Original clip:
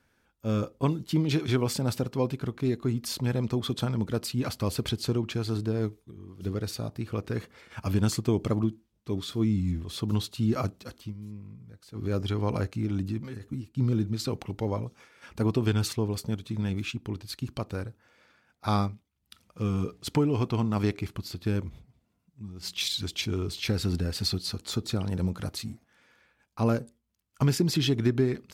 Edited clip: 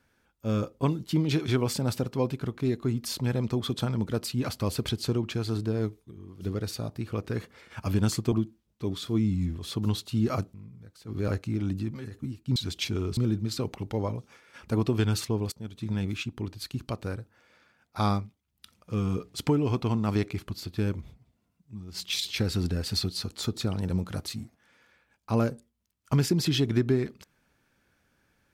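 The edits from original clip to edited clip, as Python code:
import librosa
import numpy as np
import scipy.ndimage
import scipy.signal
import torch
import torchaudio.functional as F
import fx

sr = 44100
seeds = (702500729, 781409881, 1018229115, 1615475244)

y = fx.edit(x, sr, fx.cut(start_s=8.32, length_s=0.26),
    fx.cut(start_s=10.8, length_s=0.61),
    fx.cut(start_s=12.15, length_s=0.42),
    fx.fade_in_from(start_s=16.2, length_s=0.36, floor_db=-21.5),
    fx.move(start_s=22.93, length_s=0.61, to_s=13.85), tone=tone)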